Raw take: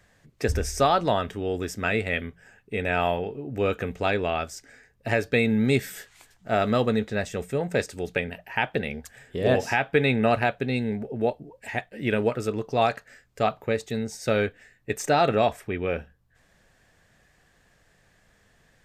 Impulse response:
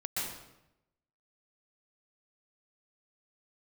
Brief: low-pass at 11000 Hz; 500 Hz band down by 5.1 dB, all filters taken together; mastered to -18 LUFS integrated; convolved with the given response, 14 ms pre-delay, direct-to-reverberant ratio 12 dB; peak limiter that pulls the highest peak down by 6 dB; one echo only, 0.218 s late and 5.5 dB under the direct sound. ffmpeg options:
-filter_complex "[0:a]lowpass=11k,equalizer=f=500:t=o:g=-6.5,alimiter=limit=-17dB:level=0:latency=1,aecho=1:1:218:0.531,asplit=2[a][b];[1:a]atrim=start_sample=2205,adelay=14[c];[b][c]afir=irnorm=-1:irlink=0,volume=-16.5dB[d];[a][d]amix=inputs=2:normalize=0,volume=11.5dB"

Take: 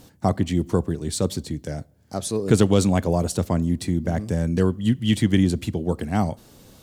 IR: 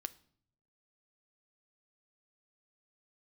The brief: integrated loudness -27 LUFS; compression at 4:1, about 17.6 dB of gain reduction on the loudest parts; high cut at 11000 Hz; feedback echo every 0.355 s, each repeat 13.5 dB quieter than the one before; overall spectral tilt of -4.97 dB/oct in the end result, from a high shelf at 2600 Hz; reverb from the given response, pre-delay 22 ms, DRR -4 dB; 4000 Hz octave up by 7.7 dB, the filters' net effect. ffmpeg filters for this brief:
-filter_complex "[0:a]lowpass=11k,highshelf=f=2.6k:g=3.5,equalizer=f=4k:t=o:g=7,acompressor=threshold=-34dB:ratio=4,aecho=1:1:355|710:0.211|0.0444,asplit=2[a][b];[1:a]atrim=start_sample=2205,adelay=22[c];[b][c]afir=irnorm=-1:irlink=0,volume=6.5dB[d];[a][d]amix=inputs=2:normalize=0,volume=3.5dB"

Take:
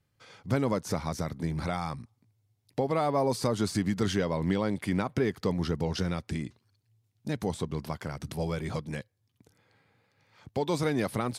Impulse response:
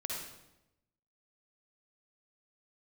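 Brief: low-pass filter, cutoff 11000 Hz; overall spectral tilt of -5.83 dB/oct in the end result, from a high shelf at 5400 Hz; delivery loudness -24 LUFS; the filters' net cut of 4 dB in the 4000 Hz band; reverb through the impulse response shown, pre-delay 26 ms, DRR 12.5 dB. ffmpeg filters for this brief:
-filter_complex "[0:a]lowpass=11k,equalizer=f=4k:t=o:g=-8,highshelf=f=5.4k:g=6,asplit=2[a][b];[1:a]atrim=start_sample=2205,adelay=26[c];[b][c]afir=irnorm=-1:irlink=0,volume=-14.5dB[d];[a][d]amix=inputs=2:normalize=0,volume=7dB"

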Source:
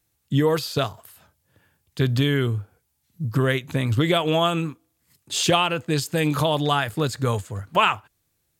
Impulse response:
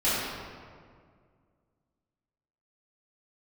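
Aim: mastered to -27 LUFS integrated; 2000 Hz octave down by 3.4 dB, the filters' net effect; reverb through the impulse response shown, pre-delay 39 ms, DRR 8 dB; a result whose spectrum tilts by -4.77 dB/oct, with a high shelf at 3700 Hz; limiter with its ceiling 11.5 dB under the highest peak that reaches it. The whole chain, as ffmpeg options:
-filter_complex "[0:a]equalizer=f=2k:t=o:g=-7.5,highshelf=f=3.7k:g=8,alimiter=limit=-17dB:level=0:latency=1,asplit=2[a][b];[1:a]atrim=start_sample=2205,adelay=39[c];[b][c]afir=irnorm=-1:irlink=0,volume=-22dB[d];[a][d]amix=inputs=2:normalize=0"

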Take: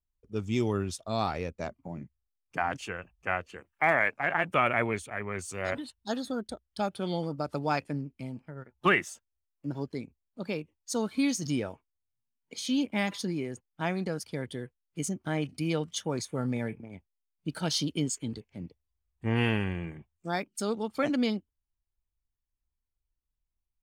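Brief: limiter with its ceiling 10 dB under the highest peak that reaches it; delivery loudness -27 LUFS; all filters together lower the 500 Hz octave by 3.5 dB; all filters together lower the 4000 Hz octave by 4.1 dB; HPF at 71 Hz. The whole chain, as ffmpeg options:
-af "highpass=71,equalizer=f=500:t=o:g=-4.5,equalizer=f=4k:t=o:g=-5.5,volume=9dB,alimiter=limit=-13.5dB:level=0:latency=1"

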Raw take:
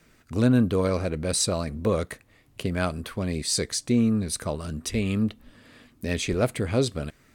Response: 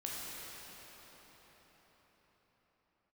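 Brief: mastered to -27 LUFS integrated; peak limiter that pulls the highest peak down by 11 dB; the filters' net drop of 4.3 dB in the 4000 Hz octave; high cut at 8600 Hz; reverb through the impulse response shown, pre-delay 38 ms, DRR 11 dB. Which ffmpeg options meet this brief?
-filter_complex "[0:a]lowpass=8.6k,equalizer=f=4k:t=o:g=-5,alimiter=limit=-21dB:level=0:latency=1,asplit=2[a][b];[1:a]atrim=start_sample=2205,adelay=38[c];[b][c]afir=irnorm=-1:irlink=0,volume=-13dB[d];[a][d]amix=inputs=2:normalize=0,volume=4dB"

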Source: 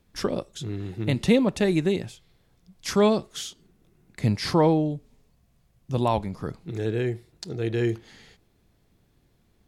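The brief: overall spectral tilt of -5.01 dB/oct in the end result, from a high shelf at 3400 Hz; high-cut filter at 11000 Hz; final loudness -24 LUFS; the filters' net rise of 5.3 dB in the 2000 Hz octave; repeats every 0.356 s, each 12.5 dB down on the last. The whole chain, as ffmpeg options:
-af "lowpass=11k,equalizer=f=2k:t=o:g=5,highshelf=f=3.4k:g=4.5,aecho=1:1:356|712|1068:0.237|0.0569|0.0137,volume=1dB"

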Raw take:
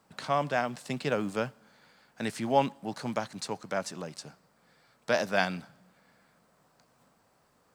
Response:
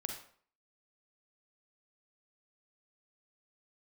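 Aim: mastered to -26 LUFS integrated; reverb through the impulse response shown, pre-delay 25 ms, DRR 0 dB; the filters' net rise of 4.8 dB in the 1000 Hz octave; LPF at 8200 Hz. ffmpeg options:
-filter_complex "[0:a]lowpass=8.2k,equalizer=f=1k:t=o:g=6.5,asplit=2[a][b];[1:a]atrim=start_sample=2205,adelay=25[c];[b][c]afir=irnorm=-1:irlink=0,volume=0dB[d];[a][d]amix=inputs=2:normalize=0"

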